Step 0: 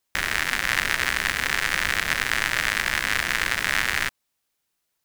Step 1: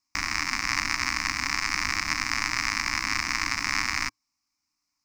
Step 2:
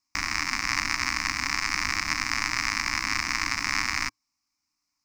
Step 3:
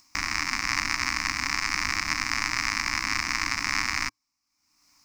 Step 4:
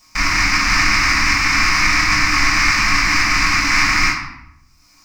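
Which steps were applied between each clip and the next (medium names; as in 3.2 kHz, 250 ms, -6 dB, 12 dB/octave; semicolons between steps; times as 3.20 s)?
FFT filter 110 Hz 0 dB, 160 Hz -5 dB, 300 Hz +7 dB, 430 Hz -22 dB, 1.1 kHz +6 dB, 1.6 kHz -8 dB, 2.3 kHz +3 dB, 3.3 kHz -15 dB, 5.2 kHz +10 dB, 10 kHz -12 dB; trim -2.5 dB
no audible change
upward compressor, threshold -45 dBFS
reverberation RT60 0.75 s, pre-delay 3 ms, DRR -11 dB; trim -3.5 dB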